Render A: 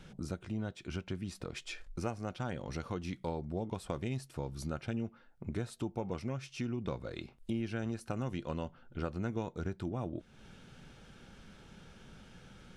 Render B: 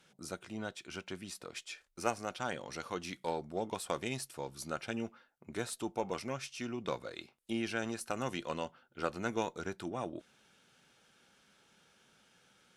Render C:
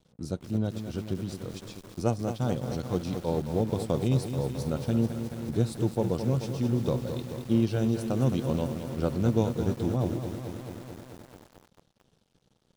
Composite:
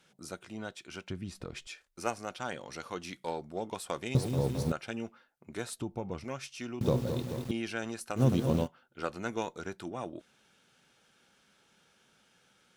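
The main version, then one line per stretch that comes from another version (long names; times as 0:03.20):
B
0:01.10–0:01.67: punch in from A
0:04.15–0:04.72: punch in from C
0:05.79–0:06.24: punch in from A
0:06.81–0:07.51: punch in from C
0:08.18–0:08.65: punch in from C, crossfade 0.06 s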